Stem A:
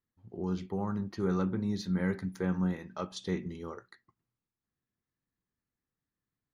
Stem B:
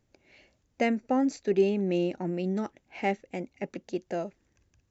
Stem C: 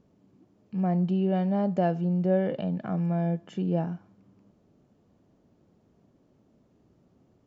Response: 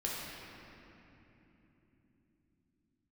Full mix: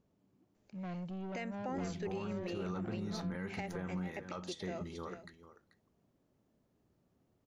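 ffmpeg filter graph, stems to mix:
-filter_complex "[0:a]adelay=1350,volume=-0.5dB,asplit=2[a][b];[b]volume=-15dB[c];[1:a]equalizer=f=140:w=0.3:g=-6,adelay=550,volume=-4dB,asplit=2[d][e];[e]volume=-14.5dB[f];[2:a]asoftclip=type=tanh:threshold=-27dB,volume=-8.5dB[g];[c][f]amix=inputs=2:normalize=0,aecho=0:1:437:1[h];[a][d][g][h]amix=inputs=4:normalize=0,equalizer=f=240:t=o:w=2.7:g=-4,alimiter=level_in=6.5dB:limit=-24dB:level=0:latency=1:release=119,volume=-6.5dB"

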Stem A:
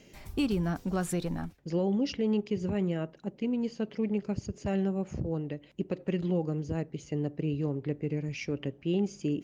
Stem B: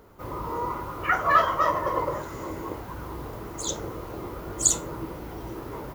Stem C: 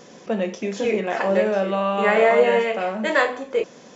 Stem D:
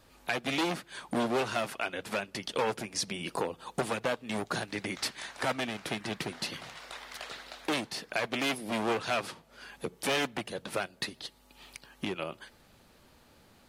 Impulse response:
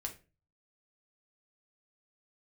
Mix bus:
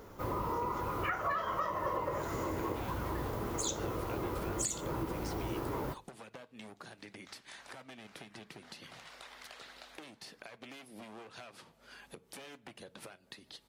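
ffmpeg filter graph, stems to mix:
-filter_complex "[1:a]alimiter=limit=-15.5dB:level=0:latency=1:release=237,acompressor=threshold=-33dB:ratio=6,volume=-1dB,asplit=2[a][b];[b]volume=-9dB[c];[2:a]volume=-19dB[d];[3:a]acompressor=threshold=-37dB:ratio=6,adelay=2300,volume=-6dB,asplit=2[e][f];[f]volume=-14.5dB[g];[d][e]amix=inputs=2:normalize=0,acompressor=threshold=-48dB:ratio=6,volume=0dB[h];[4:a]atrim=start_sample=2205[i];[c][g]amix=inputs=2:normalize=0[j];[j][i]afir=irnorm=-1:irlink=0[k];[a][h][k]amix=inputs=3:normalize=0"

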